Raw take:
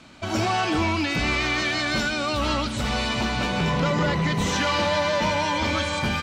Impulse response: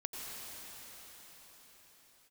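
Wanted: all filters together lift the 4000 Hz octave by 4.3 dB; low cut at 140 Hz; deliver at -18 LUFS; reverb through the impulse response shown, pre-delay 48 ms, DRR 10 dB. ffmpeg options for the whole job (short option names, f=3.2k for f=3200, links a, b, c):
-filter_complex "[0:a]highpass=140,equalizer=f=4k:t=o:g=5.5,asplit=2[a][b];[1:a]atrim=start_sample=2205,adelay=48[c];[b][c]afir=irnorm=-1:irlink=0,volume=-11.5dB[d];[a][d]amix=inputs=2:normalize=0,volume=4dB"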